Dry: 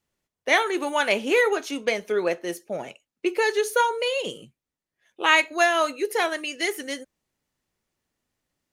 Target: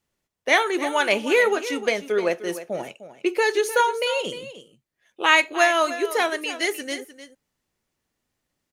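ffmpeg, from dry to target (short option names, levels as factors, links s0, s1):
-af "aecho=1:1:304:0.211,volume=1.19"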